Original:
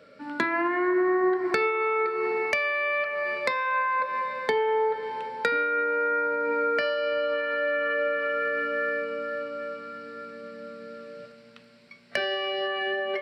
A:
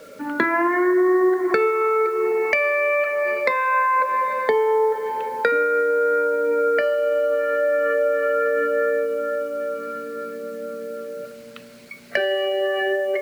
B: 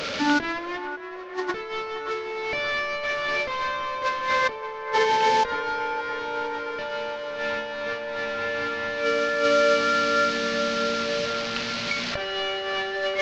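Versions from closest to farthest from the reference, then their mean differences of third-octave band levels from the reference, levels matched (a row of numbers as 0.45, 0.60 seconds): A, B; 6.0, 10.0 decibels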